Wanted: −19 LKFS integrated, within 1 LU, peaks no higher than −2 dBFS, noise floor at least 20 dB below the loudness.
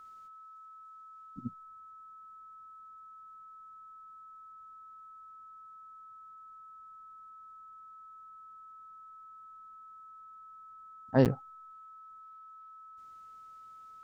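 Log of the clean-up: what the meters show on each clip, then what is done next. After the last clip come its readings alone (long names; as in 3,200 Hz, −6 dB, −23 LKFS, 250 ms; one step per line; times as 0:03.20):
number of dropouts 1; longest dropout 8.2 ms; interfering tone 1,300 Hz; level of the tone −49 dBFS; integrated loudness −42.0 LKFS; sample peak −11.5 dBFS; target loudness −19.0 LKFS
→ repair the gap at 0:11.25, 8.2 ms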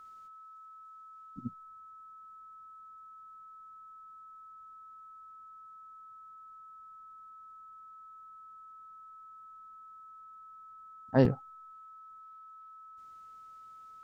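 number of dropouts 0; interfering tone 1,300 Hz; level of the tone −49 dBFS
→ notch filter 1,300 Hz, Q 30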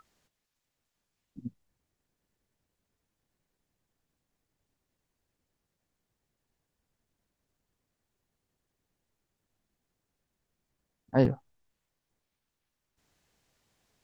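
interfering tone none found; integrated loudness −28.0 LKFS; sample peak −11.5 dBFS; target loudness −19.0 LKFS
→ level +9 dB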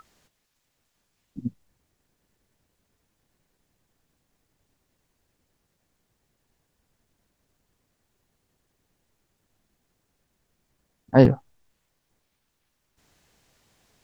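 integrated loudness −19.5 LKFS; sample peak −2.5 dBFS; background noise floor −75 dBFS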